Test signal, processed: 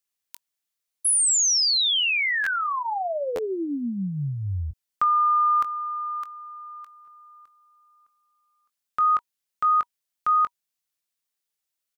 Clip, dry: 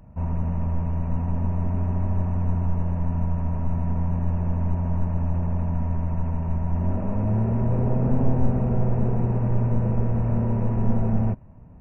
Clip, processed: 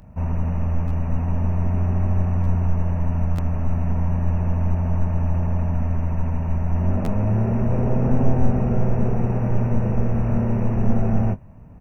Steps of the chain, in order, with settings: high shelf 2000 Hz +8 dB; notch 960 Hz, Q 29; doubler 21 ms -12.5 dB; stuck buffer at 0.87/2.43/3.35/7.04, samples 512, times 2; gain +2.5 dB

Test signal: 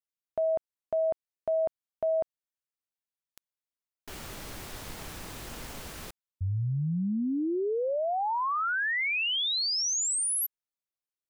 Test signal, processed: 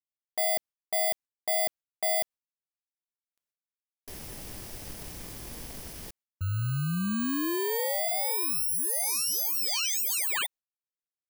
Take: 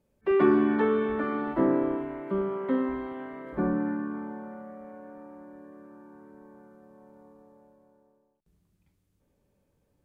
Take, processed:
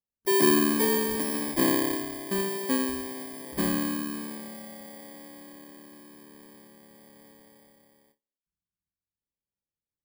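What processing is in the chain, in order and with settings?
FFT order left unsorted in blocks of 32 samples; gate with hold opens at -53 dBFS, hold 91 ms, range -29 dB

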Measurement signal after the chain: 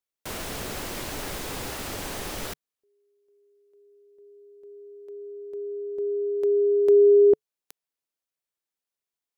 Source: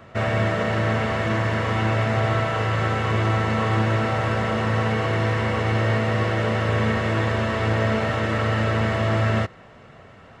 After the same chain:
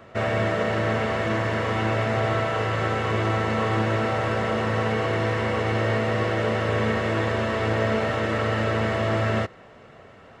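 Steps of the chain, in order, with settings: EQ curve 150 Hz 0 dB, 430 Hz +6 dB, 950 Hz +3 dB; gain -4.5 dB

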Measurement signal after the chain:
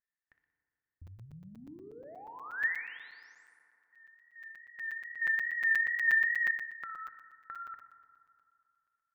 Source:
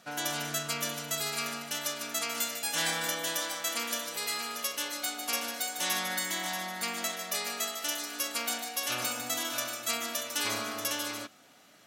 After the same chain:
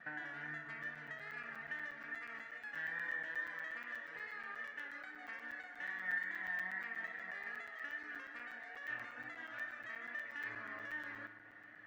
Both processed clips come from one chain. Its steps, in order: reverb removal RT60 0.5 s; low shelf 140 Hz +7.5 dB; compressor 6:1, threshold -44 dBFS; vibrato 2.4 Hz 55 cents; soft clip -31.5 dBFS; synth low-pass 1800 Hz, resonance Q 16; thinning echo 61 ms, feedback 57%, high-pass 650 Hz, level -11 dB; FDN reverb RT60 2.7 s, high-frequency decay 0.4×, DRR 7 dB; crackling interface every 0.12 s, samples 256, zero, from 0.83; gain -7 dB

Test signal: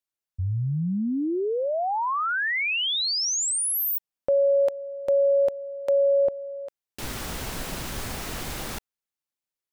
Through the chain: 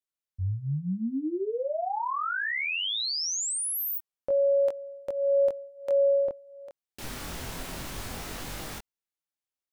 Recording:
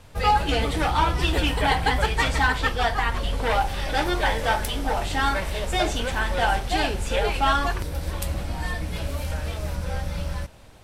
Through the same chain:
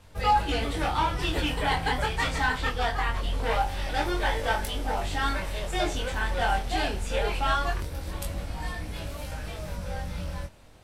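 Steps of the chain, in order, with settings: chorus 0.22 Hz, delay 20 ms, depth 4.5 ms; gain -1.5 dB

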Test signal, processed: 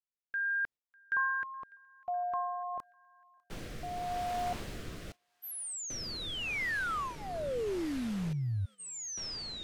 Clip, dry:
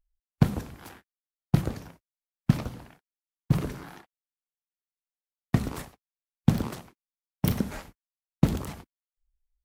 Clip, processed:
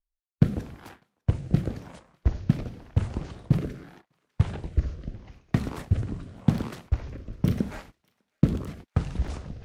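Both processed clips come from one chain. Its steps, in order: echoes that change speed 0.659 s, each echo -7 st, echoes 2; LPF 3900 Hz 6 dB/oct; thinning echo 0.6 s, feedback 72%, high-pass 1200 Hz, level -22 dB; gate -47 dBFS, range -9 dB; rotary speaker horn 0.85 Hz; gain +2 dB

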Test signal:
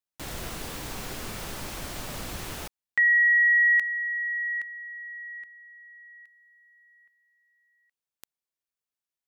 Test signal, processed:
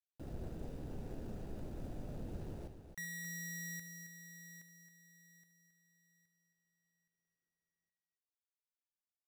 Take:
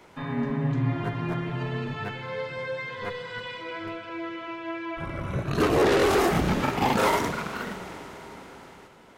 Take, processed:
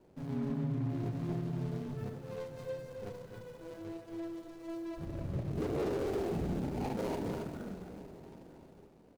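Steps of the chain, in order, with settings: median filter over 41 samples; bell 2000 Hz -5.5 dB 2.1 oct; tapped delay 72/241/270 ms -12/-20/-9 dB; limiter -22 dBFS; gain -5.5 dB

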